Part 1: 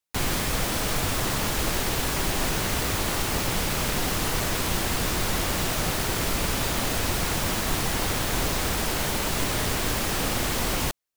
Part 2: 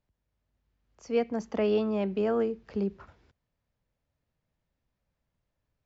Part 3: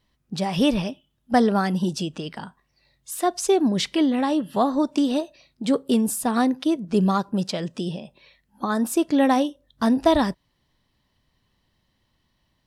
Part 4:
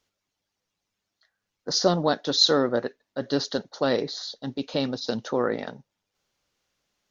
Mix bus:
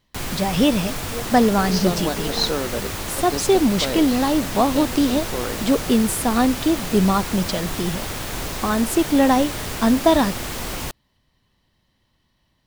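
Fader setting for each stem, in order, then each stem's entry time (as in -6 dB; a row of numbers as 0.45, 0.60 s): -2.5, -6.0, +2.5, -3.5 dB; 0.00, 0.00, 0.00, 0.00 s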